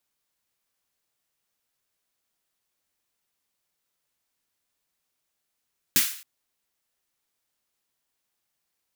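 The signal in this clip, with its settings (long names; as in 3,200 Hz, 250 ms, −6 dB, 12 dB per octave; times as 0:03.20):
synth snare length 0.27 s, tones 200 Hz, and 300 Hz, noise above 1,500 Hz, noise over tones 12 dB, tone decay 0.15 s, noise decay 0.49 s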